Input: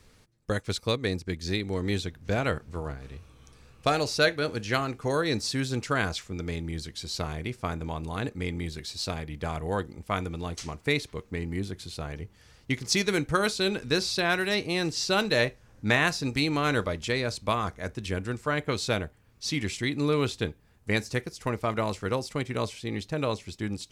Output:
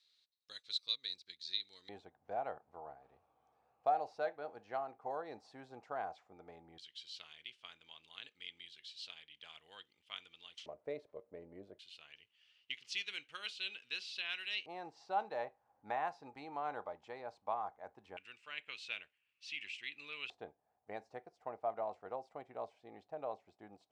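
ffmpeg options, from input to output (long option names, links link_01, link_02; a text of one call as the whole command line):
ffmpeg -i in.wav -af "asetnsamples=nb_out_samples=441:pad=0,asendcmd='1.89 bandpass f 760;6.78 bandpass f 3100;10.66 bandpass f 590;11.79 bandpass f 2900;14.66 bandpass f 800;18.17 bandpass f 2700;20.3 bandpass f 730',bandpass=frequency=3900:width_type=q:width=7.6:csg=0" out.wav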